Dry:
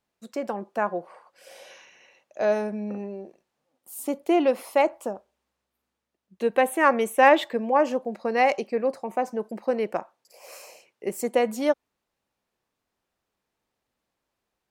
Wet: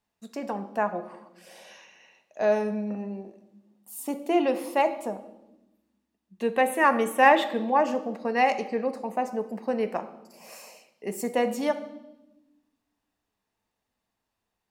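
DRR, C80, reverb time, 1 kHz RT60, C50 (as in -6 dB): 8.0 dB, 15.5 dB, 1.0 s, 0.85 s, 13.0 dB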